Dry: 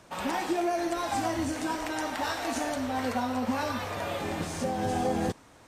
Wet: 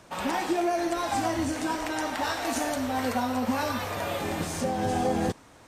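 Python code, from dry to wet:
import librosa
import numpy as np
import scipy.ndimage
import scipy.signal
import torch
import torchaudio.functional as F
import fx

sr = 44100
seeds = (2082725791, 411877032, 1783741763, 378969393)

y = fx.high_shelf(x, sr, hz=11000.0, db=9.0, at=(2.45, 4.61))
y = y * 10.0 ** (2.0 / 20.0)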